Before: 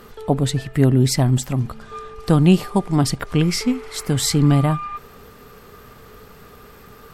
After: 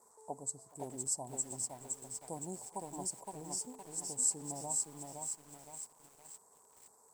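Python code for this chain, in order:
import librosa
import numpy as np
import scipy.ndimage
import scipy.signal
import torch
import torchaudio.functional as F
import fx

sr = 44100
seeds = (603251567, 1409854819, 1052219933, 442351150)

p1 = scipy.signal.sosfilt(scipy.signal.cheby2(4, 50, [1300.0, 2800.0], 'bandstop', fs=sr, output='sos'), x)
p2 = fx.quant_dither(p1, sr, seeds[0], bits=8, dither='none')
p3 = fx.double_bandpass(p2, sr, hz=2800.0, octaves=3.0)
p4 = p3 + fx.echo_feedback(p3, sr, ms=423, feedback_pct=42, wet_db=-22.0, dry=0)
p5 = fx.echo_crushed(p4, sr, ms=515, feedback_pct=55, bits=9, wet_db=-3.0)
y = p5 * 10.0 ** (-3.0 / 20.0)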